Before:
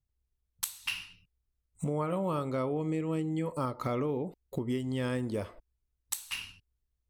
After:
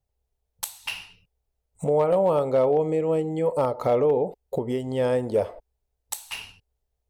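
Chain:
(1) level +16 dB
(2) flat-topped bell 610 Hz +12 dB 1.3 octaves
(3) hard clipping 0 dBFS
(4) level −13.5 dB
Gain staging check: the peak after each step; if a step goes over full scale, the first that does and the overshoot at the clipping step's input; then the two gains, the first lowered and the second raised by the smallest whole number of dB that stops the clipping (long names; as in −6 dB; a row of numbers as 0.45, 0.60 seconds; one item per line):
+0.5, +3.0, 0.0, −13.5 dBFS
step 1, 3.0 dB
step 1 +13 dB, step 4 −10.5 dB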